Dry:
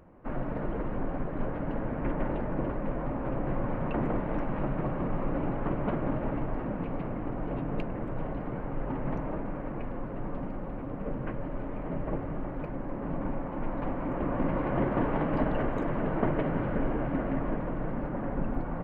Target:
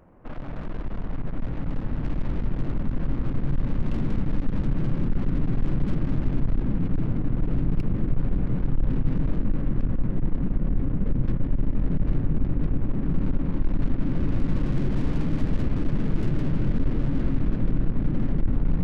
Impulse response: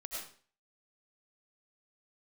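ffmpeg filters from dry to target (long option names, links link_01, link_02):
-filter_complex "[0:a]asplit=2[link_01][link_02];[1:a]atrim=start_sample=2205,atrim=end_sample=3969[link_03];[link_02][link_03]afir=irnorm=-1:irlink=0,volume=-3dB[link_04];[link_01][link_04]amix=inputs=2:normalize=0,aeval=exprs='(tanh(70.8*val(0)+0.65)-tanh(0.65))/70.8':channel_layout=same,asubboost=boost=8.5:cutoff=240,volume=1.5dB"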